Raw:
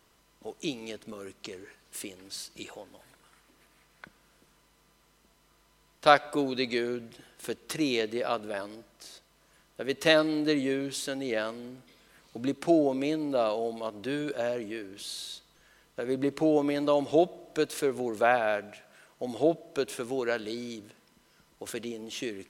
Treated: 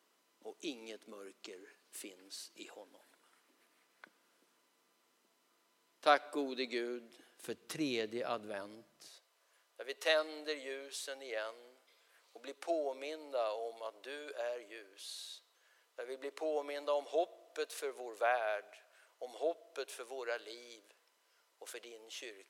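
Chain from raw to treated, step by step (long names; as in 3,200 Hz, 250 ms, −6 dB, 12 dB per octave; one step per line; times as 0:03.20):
high-pass filter 250 Hz 24 dB per octave, from 0:07.46 89 Hz, from 0:09.08 460 Hz
level −8.5 dB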